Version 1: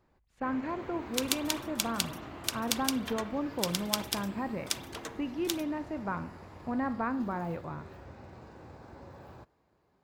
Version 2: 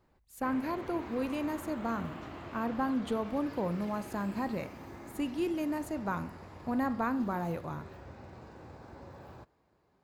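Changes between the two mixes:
speech: remove Chebyshev low-pass filter 2,400 Hz, order 2
second sound: muted

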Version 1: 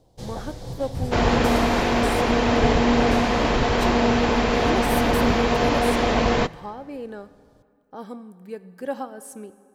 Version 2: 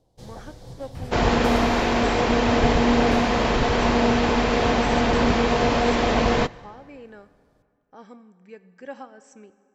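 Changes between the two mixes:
speech: add Chebyshev low-pass with heavy ripple 7,800 Hz, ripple 9 dB
first sound −7.0 dB

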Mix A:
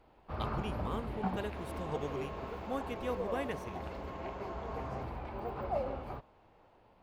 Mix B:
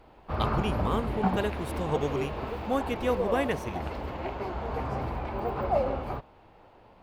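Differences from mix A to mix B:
speech +9.5 dB
first sound +8.5 dB

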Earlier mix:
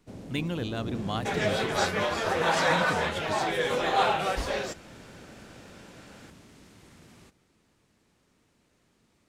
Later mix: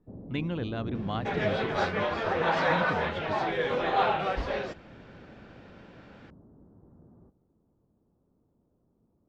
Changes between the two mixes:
first sound: add Gaussian smoothing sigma 10 samples
master: add high-frequency loss of the air 240 metres

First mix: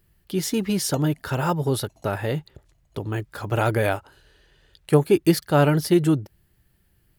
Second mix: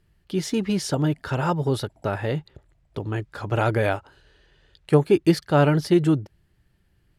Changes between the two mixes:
background: add linear-phase brick-wall band-stop 980–7,100 Hz
master: add high-frequency loss of the air 58 metres

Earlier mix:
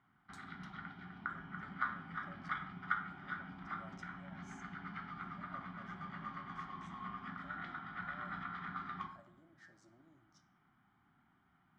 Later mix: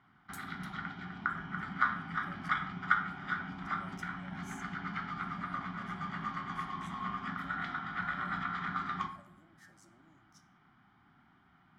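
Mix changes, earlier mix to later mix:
background +7.0 dB
master: remove high-frequency loss of the air 120 metres

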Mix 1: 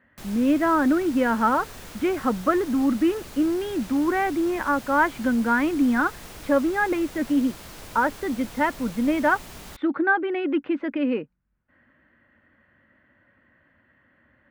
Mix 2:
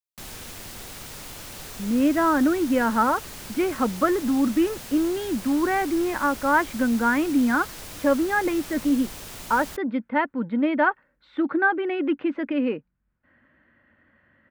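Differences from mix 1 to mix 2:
speech: entry +1.55 s
background: add high-shelf EQ 3,000 Hz +6 dB

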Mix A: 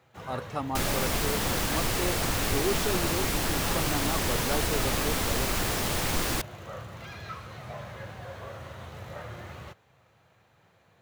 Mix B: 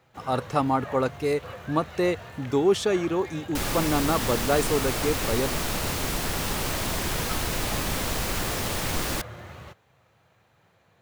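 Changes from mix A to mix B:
speech +9.0 dB
second sound: entry +2.80 s

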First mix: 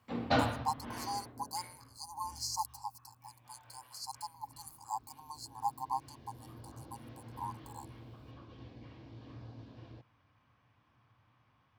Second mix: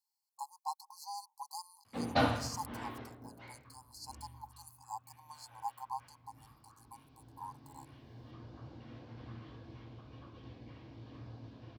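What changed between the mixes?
speech −5.0 dB
background: entry +1.85 s

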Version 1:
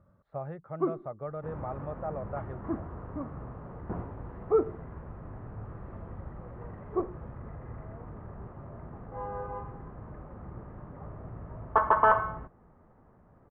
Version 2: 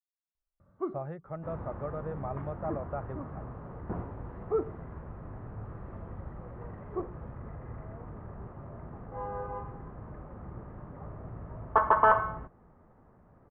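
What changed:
speech: entry +0.60 s
first sound −5.0 dB

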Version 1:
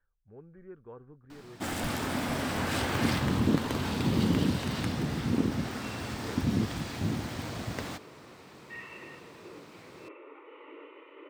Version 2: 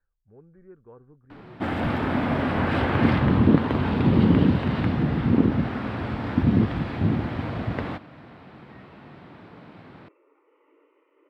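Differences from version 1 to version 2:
first sound +9.0 dB
second sound −11.5 dB
master: add high-frequency loss of the air 460 metres

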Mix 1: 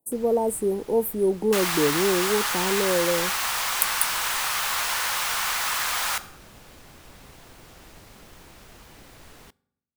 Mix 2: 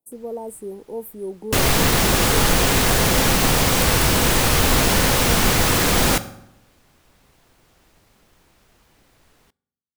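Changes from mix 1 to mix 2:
speech −8.5 dB
first sound −9.5 dB
second sound: remove four-pole ladder high-pass 820 Hz, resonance 30%

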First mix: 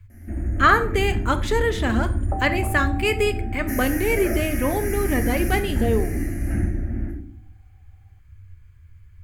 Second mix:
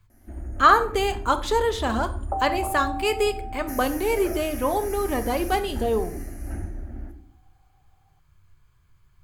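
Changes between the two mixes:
speech: add low shelf with overshoot 110 Hz −8 dB, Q 3
first sound: send −9.5 dB
master: add octave-band graphic EQ 125/250/1,000/2,000/4,000 Hz −9/−5/+7/−10/+4 dB

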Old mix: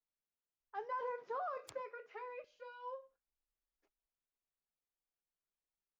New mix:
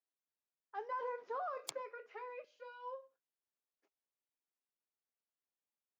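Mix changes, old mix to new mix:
background +11.5 dB
master: add high-pass filter 200 Hz 24 dB per octave

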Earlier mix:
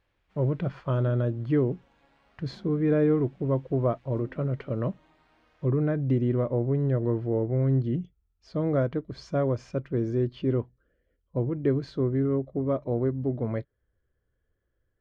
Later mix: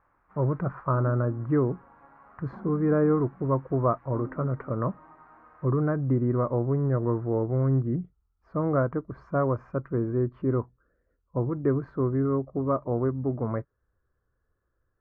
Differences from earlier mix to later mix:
background +6.5 dB
master: add drawn EQ curve 600 Hz 0 dB, 1,200 Hz +11 dB, 2,100 Hz −7 dB, 3,300 Hz −27 dB

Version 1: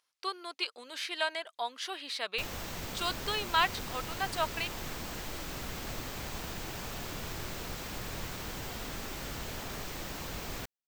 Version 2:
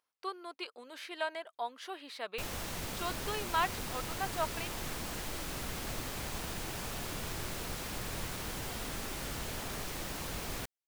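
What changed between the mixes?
speech: add parametric band 5,000 Hz −11 dB 2.9 octaves
background: add parametric band 10,000 Hz +14.5 dB 0.2 octaves

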